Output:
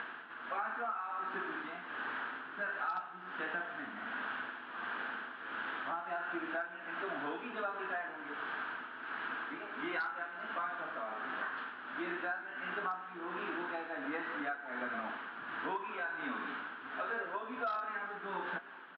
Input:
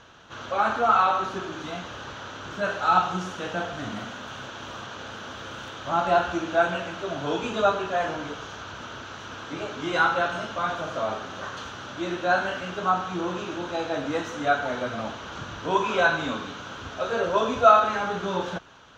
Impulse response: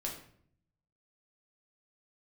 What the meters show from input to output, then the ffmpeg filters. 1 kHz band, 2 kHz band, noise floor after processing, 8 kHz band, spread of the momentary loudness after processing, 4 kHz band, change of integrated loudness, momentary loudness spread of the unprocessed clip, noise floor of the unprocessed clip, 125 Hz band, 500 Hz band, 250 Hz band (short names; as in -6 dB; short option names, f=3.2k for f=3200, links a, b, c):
-14.0 dB, -8.0 dB, -48 dBFS, n/a, 5 LU, -16.5 dB, -14.0 dB, 16 LU, -40 dBFS, -23.5 dB, -17.5 dB, -13.0 dB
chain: -af "aemphasis=mode=production:type=riaa,acompressor=mode=upward:threshold=-35dB:ratio=2.5,highpass=210,equalizer=f=250:t=q:w=4:g=8,equalizer=f=550:t=q:w=4:g=-9,equalizer=f=1.7k:t=q:w=4:g=6,lowpass=f=2.2k:w=0.5412,lowpass=f=2.2k:w=1.3066,tremolo=f=1.4:d=0.69,aresample=11025,volume=12dB,asoftclip=hard,volume=-12dB,aresample=44100,flanger=delay=5.7:depth=1.3:regen=-81:speed=0.2:shape=triangular,acompressor=threshold=-40dB:ratio=8,aecho=1:1:390:0.0841,volume=4.5dB"